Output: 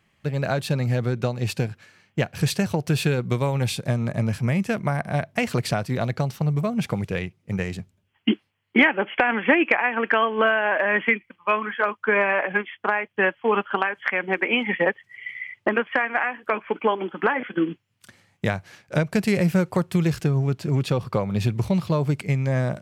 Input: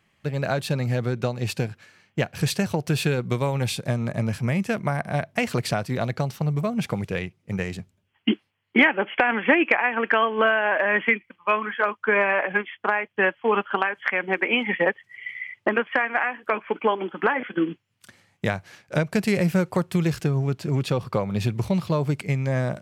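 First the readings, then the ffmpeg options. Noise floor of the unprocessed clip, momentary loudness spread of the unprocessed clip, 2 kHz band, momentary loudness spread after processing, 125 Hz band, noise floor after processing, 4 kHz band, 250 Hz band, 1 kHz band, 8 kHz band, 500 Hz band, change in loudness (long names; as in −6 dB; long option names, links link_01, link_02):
−71 dBFS, 9 LU, 0.0 dB, 8 LU, +2.0 dB, −69 dBFS, 0.0 dB, +1.0 dB, 0.0 dB, can't be measured, +0.5 dB, +0.5 dB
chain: -af "lowshelf=frequency=170:gain=3"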